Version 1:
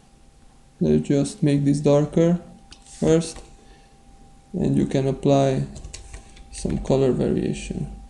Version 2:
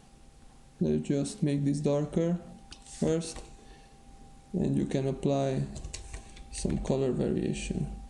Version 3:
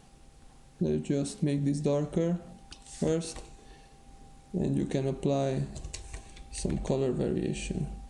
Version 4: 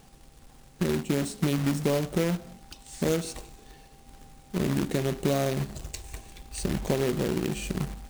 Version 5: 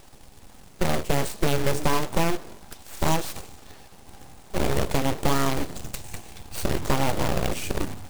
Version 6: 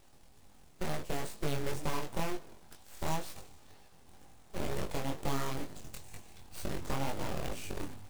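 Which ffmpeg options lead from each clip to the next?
-af "acompressor=threshold=-22dB:ratio=4,volume=-3dB"
-af "equalizer=f=220:w=7.7:g=-4.5"
-af "acrusher=bits=2:mode=log:mix=0:aa=0.000001,volume=1.5dB"
-af "aeval=exprs='abs(val(0))':c=same,volume=5.5dB"
-af "flanger=delay=19.5:depth=4.7:speed=2.1,volume=-9dB"

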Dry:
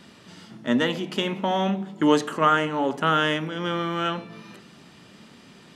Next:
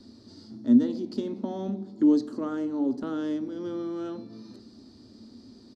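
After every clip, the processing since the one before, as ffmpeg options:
-filter_complex "[0:a]firequalizer=gain_entry='entry(110,0);entry(160,-24);entry(230,3);entry(460,-9);entry(960,-17);entry(2000,-24);entry(2900,-27);entry(4400,-1);entry(6700,-14);entry(12000,-21)':delay=0.05:min_phase=1,acrossover=split=370[a][b];[b]acompressor=threshold=-50dB:ratio=1.5[c];[a][c]amix=inputs=2:normalize=0,volume=3.5dB"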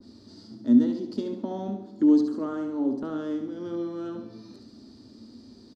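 -af "aecho=1:1:70|140|210|280|350:0.422|0.19|0.0854|0.0384|0.0173,adynamicequalizer=threshold=0.00562:dfrequency=1700:dqfactor=0.7:tfrequency=1700:tqfactor=0.7:attack=5:release=100:ratio=0.375:range=2.5:mode=cutabove:tftype=highshelf"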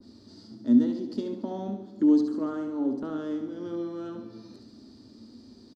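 -af "aecho=1:1:290:0.119,volume=-1.5dB"

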